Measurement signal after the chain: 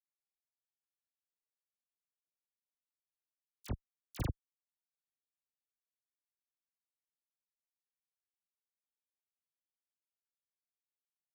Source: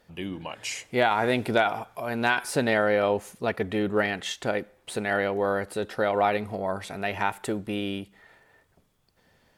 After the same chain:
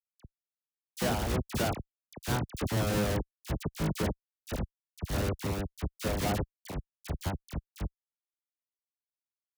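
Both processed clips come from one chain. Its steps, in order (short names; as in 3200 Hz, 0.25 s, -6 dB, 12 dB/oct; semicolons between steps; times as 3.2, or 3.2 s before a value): octaver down 1 oct, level -2 dB; de-hum 122.7 Hz, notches 3; Schmitt trigger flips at -20.5 dBFS; HPF 68 Hz 12 dB/oct; tone controls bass +4 dB, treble +3 dB; dispersion lows, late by 50 ms, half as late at 1700 Hz; three-band expander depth 40%; gain -2 dB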